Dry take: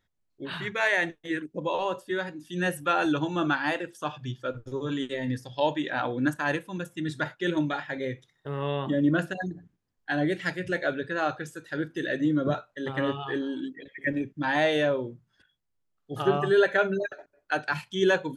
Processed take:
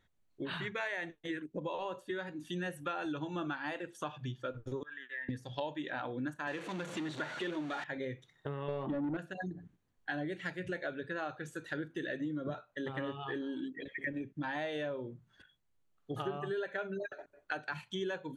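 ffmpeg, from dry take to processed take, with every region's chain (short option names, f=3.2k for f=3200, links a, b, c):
-filter_complex "[0:a]asettb=1/sr,asplit=3[a][b][c];[a]atrim=end=4.834[d];[b]atrim=start=4.83:end=5.29,asetpts=PTS-STARTPTS,afade=t=in:d=0.004:c=qsin,afade=t=out:st=0.456:d=0.004:c=qsin,acontrast=73,bandpass=f=1.7k:t=q:w=16[e];[c]atrim=start=5.286[f];[d][e]acrossfade=d=0.004:c1=hsin:c2=qsin[g];[g][f]acrossfade=d=0.004:c1=qsin:c2=hsin,asettb=1/sr,asplit=3[h][i][j];[h]atrim=end=6.474[k];[i]atrim=start=6.47:end=7.84,asetpts=PTS-STARTPTS,afade=t=in:d=0.004:c=qsin,afade=t=out:st=1.366:d=0.004:c=qsin,aeval=exprs='val(0)+0.5*0.0376*sgn(val(0))':c=same,highpass=210,lowpass=5.9k[l];[j]atrim=start=7.836[m];[k][l]acrossfade=d=0.004:c1=hsin:c2=qsin[n];[n][m]acrossfade=d=0.004:c1=qsin:c2=hsin,asettb=1/sr,asplit=3[o][p][q];[o]atrim=end=8.684[r];[p]atrim=start=8.68:end=9.17,asetpts=PTS-STARTPTS,afade=t=in:d=0.004:c=qsin,afade=t=out:st=0.486:d=0.004:c=qsin,tiltshelf=f=690:g=6.5,asplit=2[s][t];[t]highpass=f=720:p=1,volume=21dB,asoftclip=type=tanh:threshold=-9.5dB[u];[s][u]amix=inputs=2:normalize=0,lowpass=f=1.4k:p=1,volume=-6dB[v];[q]atrim=start=9.166[w];[r][v]acrossfade=d=0.004:c1=hsin:c2=qsin[x];[x][w]acrossfade=d=0.004:c1=qsin:c2=hsin,highshelf=f=10k:g=-10,bandreject=f=5.1k:w=6.5,acompressor=threshold=-40dB:ratio=5,volume=3dB"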